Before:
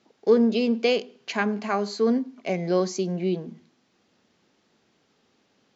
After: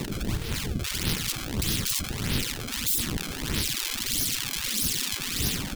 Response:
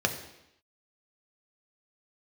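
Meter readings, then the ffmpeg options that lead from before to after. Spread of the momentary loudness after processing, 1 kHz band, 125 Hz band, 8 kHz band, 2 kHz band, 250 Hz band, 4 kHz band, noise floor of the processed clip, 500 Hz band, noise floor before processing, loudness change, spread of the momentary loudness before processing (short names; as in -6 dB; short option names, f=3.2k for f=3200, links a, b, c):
5 LU, -8.0 dB, +4.5 dB, n/a, +1.0 dB, -8.5 dB, +9.0 dB, -35 dBFS, -17.0 dB, -68 dBFS, -2.5 dB, 10 LU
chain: -filter_complex "[0:a]aeval=exprs='val(0)+0.5*0.0376*sgn(val(0))':c=same,acrossover=split=110|700[a][b][c];[c]dynaudnorm=f=350:g=5:m=12dB[d];[a][b][d]amix=inputs=3:normalize=0,aexciter=amount=13.8:drive=7.7:freq=3k,asplit=2[e][f];[1:a]atrim=start_sample=2205,asetrate=48510,aresample=44100[g];[f][g]afir=irnorm=-1:irlink=0,volume=-26dB[h];[e][h]amix=inputs=2:normalize=0,acrusher=samples=27:mix=1:aa=0.000001:lfo=1:lforange=43.2:lforate=1.6,adynamicequalizer=threshold=0.126:dfrequency=250:dqfactor=2.2:tfrequency=250:tqfactor=2.2:attack=5:release=100:ratio=0.375:range=3:mode=cutabove:tftype=bell,afftfilt=real='re*lt(hypot(re,im),0.708)':imag='im*lt(hypot(re,im),0.708)':win_size=1024:overlap=0.75,firequalizer=gain_entry='entry(110,0);entry(660,-25);entry(3200,-16)':delay=0.05:min_phase=1"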